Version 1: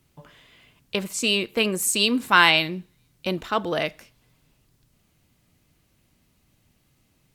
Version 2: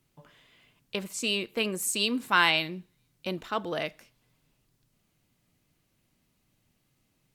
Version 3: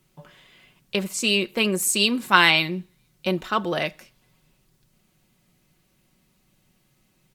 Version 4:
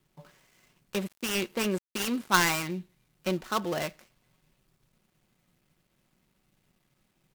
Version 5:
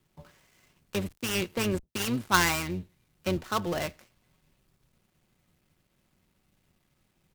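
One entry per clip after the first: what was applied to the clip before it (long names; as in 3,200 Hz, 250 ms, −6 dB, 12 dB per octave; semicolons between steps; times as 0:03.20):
parametric band 62 Hz −12.5 dB 0.54 octaves; level −6.5 dB
comb filter 5.4 ms, depth 43%; level +6.5 dB
gap after every zero crossing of 0.13 ms; level −5 dB
sub-octave generator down 1 octave, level −5 dB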